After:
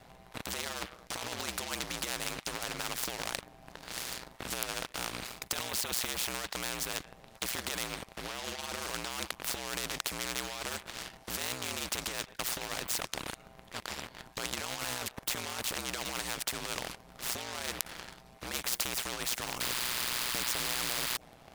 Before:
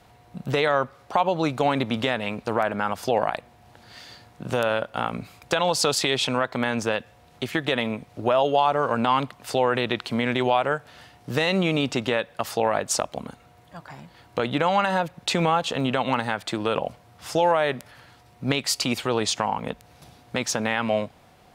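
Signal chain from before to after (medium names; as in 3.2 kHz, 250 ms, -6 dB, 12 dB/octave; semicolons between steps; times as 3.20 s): compressor with a negative ratio -24 dBFS, ratio -0.5; painted sound noise, 19.60–21.17 s, 900–5100 Hz -23 dBFS; waveshaping leveller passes 3; ring modulator 61 Hz; spectrum-flattening compressor 4:1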